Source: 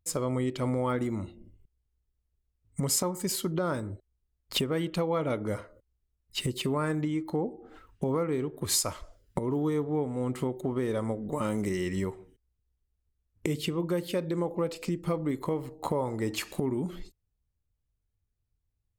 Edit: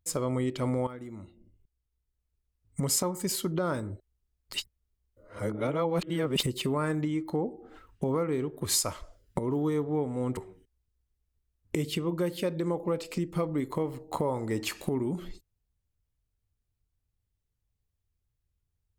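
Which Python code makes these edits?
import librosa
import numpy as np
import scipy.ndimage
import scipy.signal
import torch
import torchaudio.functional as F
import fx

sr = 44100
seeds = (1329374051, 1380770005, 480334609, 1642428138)

y = fx.edit(x, sr, fx.fade_in_from(start_s=0.87, length_s=1.94, floor_db=-14.5),
    fx.reverse_span(start_s=4.54, length_s=1.89),
    fx.cut(start_s=10.37, length_s=1.71), tone=tone)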